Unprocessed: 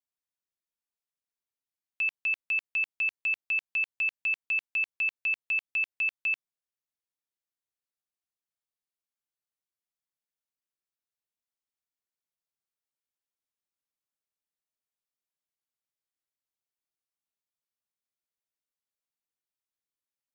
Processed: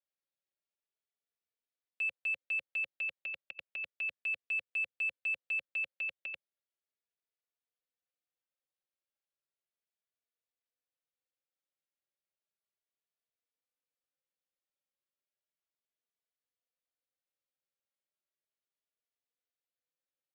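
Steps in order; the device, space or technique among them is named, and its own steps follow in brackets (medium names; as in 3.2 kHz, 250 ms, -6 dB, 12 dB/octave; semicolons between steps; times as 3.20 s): barber-pole flanger into a guitar amplifier (endless flanger 3.3 ms +0.34 Hz; saturation -30 dBFS, distortion -14 dB; cabinet simulation 110–4300 Hz, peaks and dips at 120 Hz -8 dB, 230 Hz -7 dB, 530 Hz +9 dB, 1 kHz -8 dB)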